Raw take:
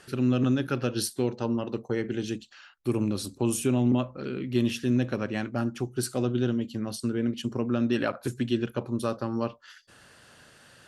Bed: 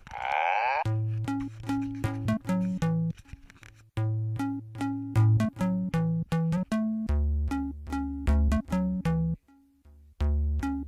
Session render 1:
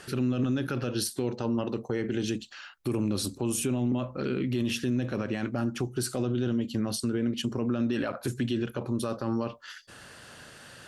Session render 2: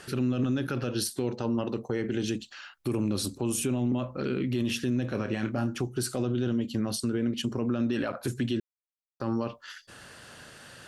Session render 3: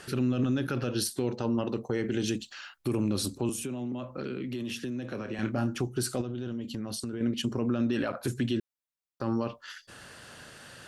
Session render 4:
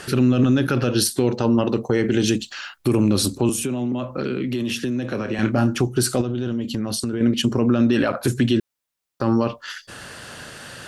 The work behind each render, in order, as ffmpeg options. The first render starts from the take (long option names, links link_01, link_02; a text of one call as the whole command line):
ffmpeg -i in.wav -filter_complex "[0:a]asplit=2[link_01][link_02];[link_02]acompressor=threshold=-32dB:ratio=6,volume=-0.5dB[link_03];[link_01][link_03]amix=inputs=2:normalize=0,alimiter=limit=-20dB:level=0:latency=1:release=28" out.wav
ffmpeg -i in.wav -filter_complex "[0:a]asettb=1/sr,asplit=3[link_01][link_02][link_03];[link_01]atrim=end=5.124[link_04];[link_02]atrim=start=5.12:end=5.78,asetpts=PTS-STARTPTS,afade=type=in:duration=0.004:curve=qsin,afade=type=out:start_time=0.656:duration=0.004:curve=qsin,asplit=2[link_05][link_06];[link_06]adelay=27,volume=-7.5dB[link_07];[link_05][link_07]amix=inputs=2:normalize=0,atrim=end_sample=29106[link_08];[link_03]atrim=start=5.776[link_09];[link_04][link_08]acrossfade=duration=0.004:curve1=hsin:curve2=qsin[link_10];[link_10][link_09]acrossfade=duration=0.004:curve1=qsin:curve2=hsin,asplit=3[link_11][link_12][link_13];[link_11]atrim=end=8.6,asetpts=PTS-STARTPTS,afade=type=out:start_time=8.596:duration=0.004:curve=hsin[link_14];[link_12]atrim=start=8.6:end=9.2,asetpts=PTS-STARTPTS,volume=0[link_15];[link_13]atrim=start=9.2,asetpts=PTS-STARTPTS,afade=type=in:duration=0.004:curve=hsin[link_16];[link_14][link_15][link_16]concat=n=3:v=0:a=1" out.wav
ffmpeg -i in.wav -filter_complex "[0:a]asettb=1/sr,asplit=3[link_01][link_02][link_03];[link_01]atrim=end=1.934[link_04];[link_02]atrim=start=1.93:end=2.77,asetpts=PTS-STARTPTS,afade=type=in:duration=0.004:curve=qsin,afade=type=out:start_time=0.836:duration=0.004:curve=qsin,highshelf=frequency=5400:gain=5[link_05];[link_03]atrim=start=2.766[link_06];[link_04][link_05]acrossfade=duration=0.004:curve1=hsin:curve2=qsin[link_07];[link_07][link_06]acrossfade=duration=0.004:curve1=qsin:curve2=hsin,asettb=1/sr,asplit=3[link_08][link_09][link_10];[link_08]atrim=end=3.494[link_11];[link_09]atrim=start=3.49:end=5.39,asetpts=PTS-STARTPTS,afade=type=in:duration=0.004:curve=qsin,afade=type=out:start_time=1.896:duration=0.004:curve=qsin,acrossover=split=86|190[link_12][link_13][link_14];[link_12]acompressor=threshold=-60dB:ratio=4[link_15];[link_13]acompressor=threshold=-46dB:ratio=4[link_16];[link_14]acompressor=threshold=-34dB:ratio=4[link_17];[link_15][link_16][link_17]amix=inputs=3:normalize=0[link_18];[link_10]atrim=start=5.386[link_19];[link_11][link_18]acrossfade=duration=0.004:curve1=hsin:curve2=qsin[link_20];[link_20][link_19]acrossfade=duration=0.004:curve1=qsin:curve2=hsin,asettb=1/sr,asplit=3[link_21][link_22][link_23];[link_21]atrim=end=6.214[link_24];[link_22]atrim=start=6.21:end=7.21,asetpts=PTS-STARTPTS,afade=type=in:duration=0.004:curve=qsin,afade=type=out:start_time=0.996:duration=0.004:curve=qsin,acompressor=threshold=-31dB:ratio=6:attack=3.2:release=140:knee=1:detection=peak[link_25];[link_23]atrim=start=7.206[link_26];[link_24][link_25]acrossfade=duration=0.004:curve1=hsin:curve2=qsin[link_27];[link_27][link_26]acrossfade=duration=0.004:curve1=qsin:curve2=hsin" out.wav
ffmpeg -i in.wav -af "volume=10.5dB" out.wav